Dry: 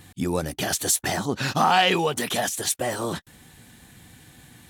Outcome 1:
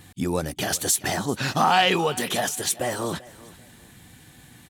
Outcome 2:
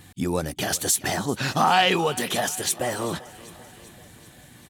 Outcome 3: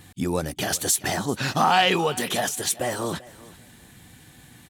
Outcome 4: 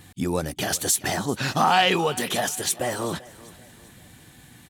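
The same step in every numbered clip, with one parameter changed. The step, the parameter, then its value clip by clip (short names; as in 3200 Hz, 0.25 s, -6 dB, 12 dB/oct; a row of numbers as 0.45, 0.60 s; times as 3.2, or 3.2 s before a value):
feedback echo, feedback: 27, 62, 18, 42%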